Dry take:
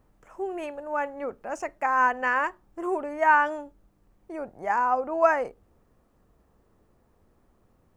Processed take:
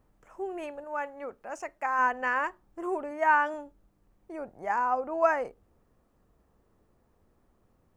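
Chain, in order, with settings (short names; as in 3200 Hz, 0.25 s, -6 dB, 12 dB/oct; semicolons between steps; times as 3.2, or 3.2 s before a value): 0.84–1.99 low shelf 480 Hz -6 dB; 3.11–3.54 HPF 110 Hz 12 dB/oct; gain -3.5 dB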